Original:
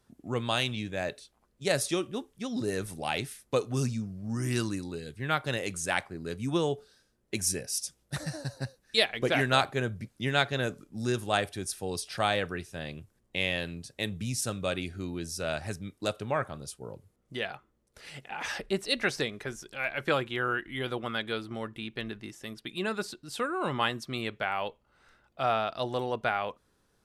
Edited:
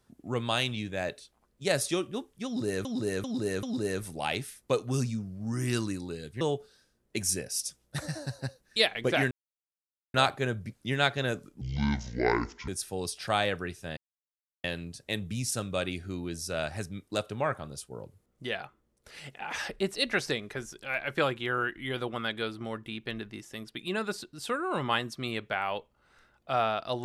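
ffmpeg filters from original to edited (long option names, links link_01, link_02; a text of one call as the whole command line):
ffmpeg -i in.wav -filter_complex "[0:a]asplit=10[link_01][link_02][link_03][link_04][link_05][link_06][link_07][link_08][link_09][link_10];[link_01]atrim=end=2.852[link_11];[link_02]atrim=start=2.458:end=2.852[link_12];[link_03]atrim=start=2.458:end=2.852[link_13];[link_04]atrim=start=2.458:end=5.242[link_14];[link_05]atrim=start=6.588:end=9.49,asetpts=PTS-STARTPTS,afade=type=out:start_time=2.898:duration=0.004:curve=hsin,apad=pad_dur=0.83[link_15];[link_06]atrim=start=9.49:end=10.964,asetpts=PTS-STARTPTS,afade=type=in:duration=0.004:curve=hsin[link_16];[link_07]atrim=start=10.96:end=11.58,asetpts=PTS-STARTPTS,asetrate=25578,aresample=44100,atrim=end_sample=47141,asetpts=PTS-STARTPTS[link_17];[link_08]atrim=start=11.576:end=12.87,asetpts=PTS-STARTPTS,afade=type=out:start_time=1.29:duration=0.004:curve=hsin[link_18];[link_09]atrim=start=12.87:end=13.54,asetpts=PTS-STARTPTS,volume=0[link_19];[link_10]atrim=start=13.54,asetpts=PTS-STARTPTS,afade=type=in:duration=0.004:curve=hsin[link_20];[link_11][link_12]acrossfade=duration=0.004:curve1=hsin:curve2=hsin[link_21];[link_21][link_13]acrossfade=duration=0.004:curve1=hsin:curve2=hsin[link_22];[link_22][link_14]acrossfade=duration=0.004:curve1=hsin:curve2=hsin[link_23];[link_15][link_16]concat=n=2:v=0:a=1[link_24];[link_23][link_24]acrossfade=duration=0.004:curve1=hsin:curve2=hsin[link_25];[link_25][link_17]acrossfade=duration=0.004:curve1=hsin:curve2=hsin[link_26];[link_18][link_19][link_20]concat=n=3:v=0:a=1[link_27];[link_26][link_27]acrossfade=duration=0.004:curve1=hsin:curve2=hsin" out.wav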